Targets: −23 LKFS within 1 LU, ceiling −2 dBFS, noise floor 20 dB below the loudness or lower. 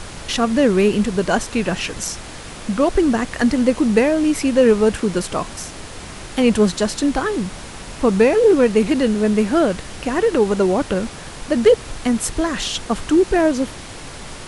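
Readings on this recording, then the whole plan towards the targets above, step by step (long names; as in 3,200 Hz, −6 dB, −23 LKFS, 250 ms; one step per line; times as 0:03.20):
background noise floor −35 dBFS; target noise floor −38 dBFS; integrated loudness −18.0 LKFS; sample peak −1.0 dBFS; target loudness −23.0 LKFS
→ noise reduction from a noise print 6 dB
level −5 dB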